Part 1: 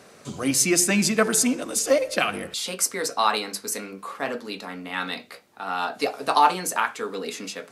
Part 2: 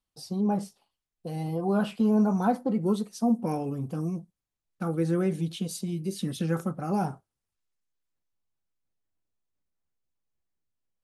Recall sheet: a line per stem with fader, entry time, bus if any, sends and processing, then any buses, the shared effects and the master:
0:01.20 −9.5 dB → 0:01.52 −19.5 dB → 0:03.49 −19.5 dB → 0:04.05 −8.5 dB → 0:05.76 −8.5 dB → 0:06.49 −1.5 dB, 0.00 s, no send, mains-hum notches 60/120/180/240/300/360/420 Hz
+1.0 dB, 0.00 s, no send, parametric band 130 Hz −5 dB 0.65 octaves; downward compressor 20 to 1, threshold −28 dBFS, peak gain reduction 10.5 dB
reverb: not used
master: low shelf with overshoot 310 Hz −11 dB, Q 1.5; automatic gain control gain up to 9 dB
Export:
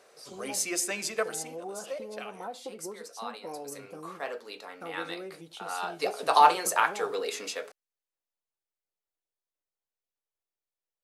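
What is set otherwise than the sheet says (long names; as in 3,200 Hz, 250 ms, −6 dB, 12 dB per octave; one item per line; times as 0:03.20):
stem 2 +1.0 dB → −5.5 dB
master: missing automatic gain control gain up to 9 dB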